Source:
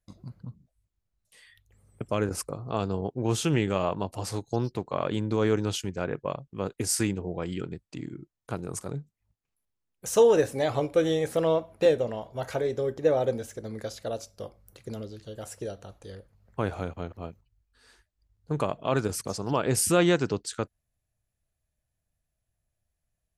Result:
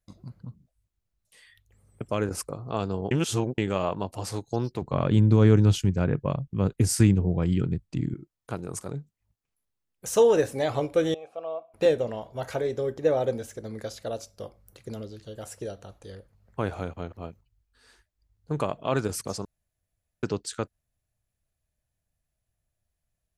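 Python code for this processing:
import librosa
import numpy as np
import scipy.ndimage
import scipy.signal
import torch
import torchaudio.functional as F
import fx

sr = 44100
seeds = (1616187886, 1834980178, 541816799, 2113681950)

y = fx.bass_treble(x, sr, bass_db=14, treble_db=-1, at=(4.82, 8.14))
y = fx.vowel_filter(y, sr, vowel='a', at=(11.14, 11.74))
y = fx.edit(y, sr, fx.reverse_span(start_s=3.11, length_s=0.47),
    fx.room_tone_fill(start_s=19.45, length_s=0.78), tone=tone)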